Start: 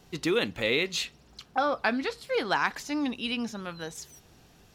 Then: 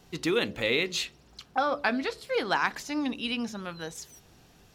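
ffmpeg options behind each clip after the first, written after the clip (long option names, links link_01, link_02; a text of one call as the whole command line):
ffmpeg -i in.wav -af "bandreject=frequency=72.07:width_type=h:width=4,bandreject=frequency=144.14:width_type=h:width=4,bandreject=frequency=216.21:width_type=h:width=4,bandreject=frequency=288.28:width_type=h:width=4,bandreject=frequency=360.35:width_type=h:width=4,bandreject=frequency=432.42:width_type=h:width=4,bandreject=frequency=504.49:width_type=h:width=4,bandreject=frequency=576.56:width_type=h:width=4,bandreject=frequency=648.63:width_type=h:width=4" out.wav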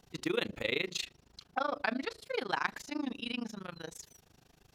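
ffmpeg -i in.wav -af "tremolo=f=26:d=0.974,volume=-2.5dB" out.wav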